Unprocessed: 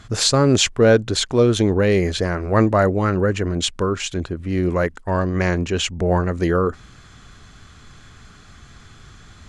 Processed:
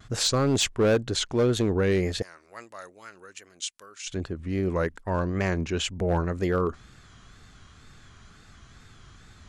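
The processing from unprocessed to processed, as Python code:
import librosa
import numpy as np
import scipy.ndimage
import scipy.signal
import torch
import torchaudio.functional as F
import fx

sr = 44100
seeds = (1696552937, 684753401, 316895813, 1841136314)

y = fx.wow_flutter(x, sr, seeds[0], rate_hz=2.1, depth_cents=99.0)
y = fx.differentiator(y, sr, at=(2.22, 4.07))
y = np.clip(y, -10.0 ** (-10.5 / 20.0), 10.0 ** (-10.5 / 20.0))
y = F.gain(torch.from_numpy(y), -6.5).numpy()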